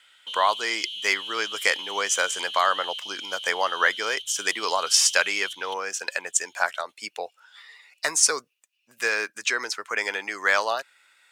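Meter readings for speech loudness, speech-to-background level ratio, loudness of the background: −24.5 LKFS, 8.5 dB, −33.0 LKFS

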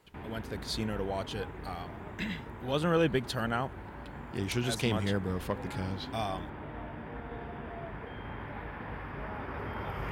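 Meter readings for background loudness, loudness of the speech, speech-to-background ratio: −42.5 LKFS, −34.0 LKFS, 8.5 dB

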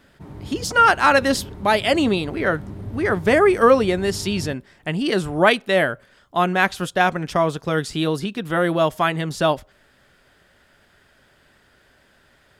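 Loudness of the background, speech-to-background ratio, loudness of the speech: −36.5 LKFS, 16.5 dB, −20.0 LKFS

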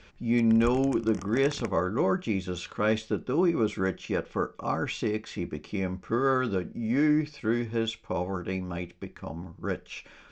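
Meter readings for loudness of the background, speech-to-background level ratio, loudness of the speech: −44.0 LKFS, 15.5 dB, −28.5 LKFS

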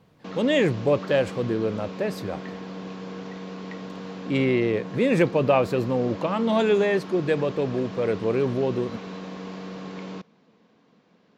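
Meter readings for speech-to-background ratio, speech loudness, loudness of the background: 12.5 dB, −24.0 LKFS, −36.5 LKFS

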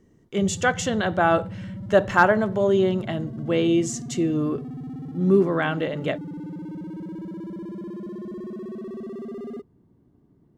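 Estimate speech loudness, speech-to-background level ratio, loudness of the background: −22.5 LKFS, 13.0 dB, −35.5 LKFS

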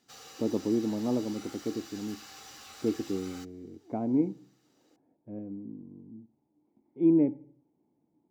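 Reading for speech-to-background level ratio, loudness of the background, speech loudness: 16.5 dB, −47.5 LKFS, −31.0 LKFS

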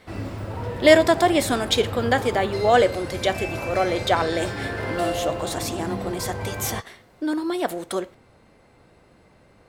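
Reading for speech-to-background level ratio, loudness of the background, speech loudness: 7.5 dB, −30.5 LKFS, −23.0 LKFS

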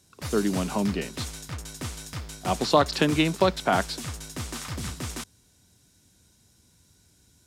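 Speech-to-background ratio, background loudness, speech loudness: 11.0 dB, −36.0 LKFS, −25.0 LKFS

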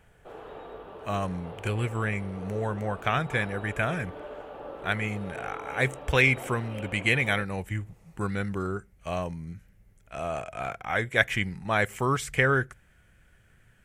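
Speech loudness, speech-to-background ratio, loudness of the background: −28.5 LKFS, 14.0 dB, −42.5 LKFS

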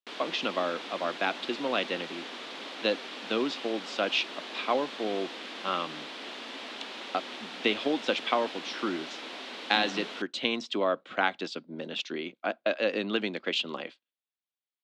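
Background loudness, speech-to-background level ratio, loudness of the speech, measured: −39.5 LKFS, 8.0 dB, −31.5 LKFS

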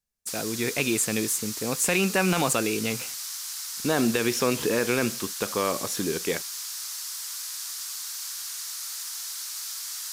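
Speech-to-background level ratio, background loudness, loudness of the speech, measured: 5.5 dB, −32.0 LKFS, −26.5 LKFS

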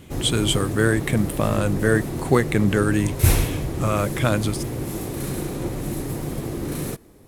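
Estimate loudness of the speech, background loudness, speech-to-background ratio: −22.5 LKFS, −27.0 LKFS, 4.5 dB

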